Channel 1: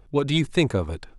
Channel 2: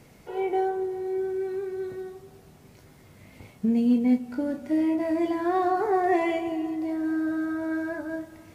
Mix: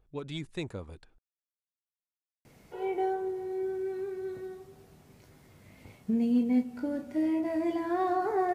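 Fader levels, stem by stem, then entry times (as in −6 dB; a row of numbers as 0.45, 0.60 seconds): −16.0, −4.5 decibels; 0.00, 2.45 seconds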